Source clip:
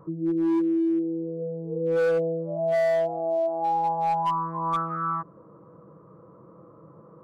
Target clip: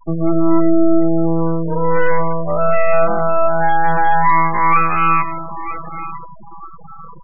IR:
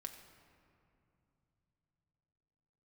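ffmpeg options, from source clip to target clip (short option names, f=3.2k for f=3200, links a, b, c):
-filter_complex "[0:a]crystalizer=i=6.5:c=0,highshelf=f=2.9k:g=-7.5,asplit=2[a][b];[b]adelay=944,lowpass=f=1.9k:p=1,volume=-15dB,asplit=2[c][d];[d]adelay=944,lowpass=f=1.9k:p=1,volume=0.44,asplit=2[e][f];[f]adelay=944,lowpass=f=1.9k:p=1,volume=0.44,asplit=2[g][h];[h]adelay=944,lowpass=f=1.9k:p=1,volume=0.44[i];[a][c][e][g][i]amix=inputs=5:normalize=0,aeval=exprs='max(val(0),0)':c=same,bandreject=f=60:t=h:w=6,bandreject=f=120:t=h:w=6,bandreject=f=180:t=h:w=6,bandreject=f=240:t=h:w=6,bandreject=f=300:t=h:w=6,bandreject=f=360:t=h:w=6,bandreject=f=420:t=h:w=6,asplit=2[j][k];[k]highpass=f=720:p=1,volume=16dB,asoftclip=type=tanh:threshold=-13.5dB[l];[j][l]amix=inputs=2:normalize=0,lowpass=f=4.2k:p=1,volume=-6dB,bass=f=250:g=10,treble=f=4k:g=-13,asplit=2[m][n];[1:a]atrim=start_sample=2205[o];[n][o]afir=irnorm=-1:irlink=0,volume=6.5dB[p];[m][p]amix=inputs=2:normalize=0,afftfilt=real='re*gte(hypot(re,im),0.0794)':imag='im*gte(hypot(re,im),0.0794)':win_size=1024:overlap=0.75,volume=1.5dB"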